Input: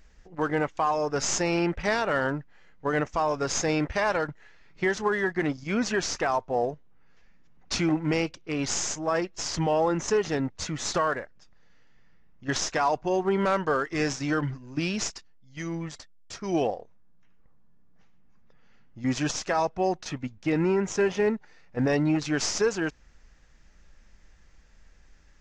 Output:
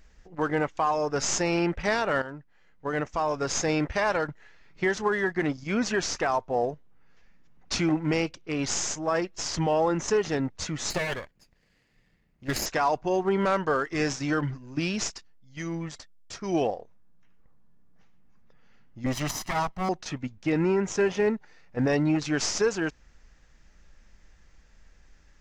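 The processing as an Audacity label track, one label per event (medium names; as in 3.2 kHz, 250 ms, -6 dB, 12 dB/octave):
2.220000	3.890000	fade in equal-power, from -13 dB
10.900000	12.660000	comb filter that takes the minimum delay 0.44 ms
19.060000	19.890000	comb filter that takes the minimum delay 1 ms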